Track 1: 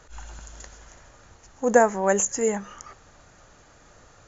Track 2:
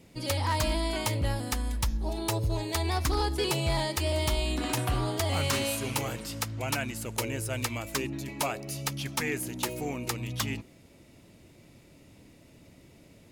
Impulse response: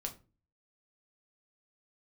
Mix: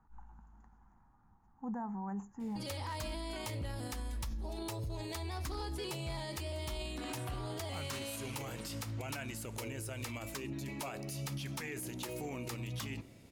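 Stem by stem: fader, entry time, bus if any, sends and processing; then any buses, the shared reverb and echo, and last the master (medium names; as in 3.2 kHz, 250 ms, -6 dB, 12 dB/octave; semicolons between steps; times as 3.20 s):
-16.0 dB, 0.00 s, send -10 dB, FFT filter 130 Hz 0 dB, 210 Hz +8 dB, 580 Hz -21 dB, 830 Hz +5 dB, 3.4 kHz -29 dB
-5.0 dB, 2.40 s, send -8 dB, none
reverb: on, RT60 0.35 s, pre-delay 5 ms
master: peak limiter -33 dBFS, peak gain reduction 11.5 dB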